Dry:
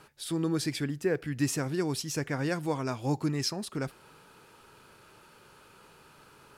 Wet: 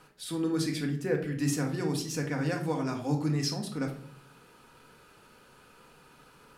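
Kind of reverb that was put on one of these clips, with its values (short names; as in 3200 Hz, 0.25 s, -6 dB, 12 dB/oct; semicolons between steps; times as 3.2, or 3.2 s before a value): shoebox room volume 810 m³, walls furnished, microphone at 1.9 m; gain -3 dB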